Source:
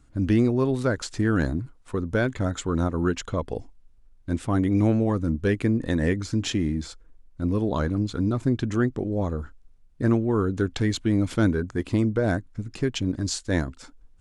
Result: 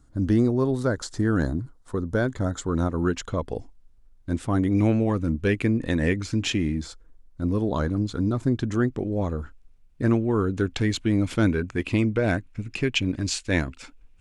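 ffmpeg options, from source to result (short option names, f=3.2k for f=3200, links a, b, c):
-af "asetnsamples=n=441:p=0,asendcmd='2.73 equalizer g -1.5;4.78 equalizer g 7;6.79 equalizer g -3;8.89 equalizer g 5;11.47 equalizer g 13.5',equalizer=f=2.5k:t=o:w=0.59:g=-11.5"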